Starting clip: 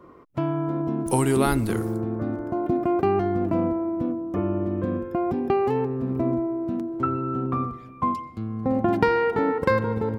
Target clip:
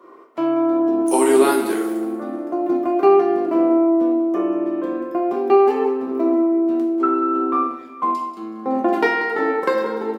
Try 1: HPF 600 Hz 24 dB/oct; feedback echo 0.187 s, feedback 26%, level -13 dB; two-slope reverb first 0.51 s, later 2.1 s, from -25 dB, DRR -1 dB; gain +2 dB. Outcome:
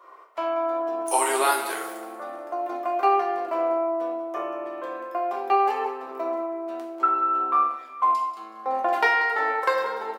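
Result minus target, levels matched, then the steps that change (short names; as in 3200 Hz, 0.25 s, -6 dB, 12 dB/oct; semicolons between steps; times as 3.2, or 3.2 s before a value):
250 Hz band -13.0 dB
change: HPF 300 Hz 24 dB/oct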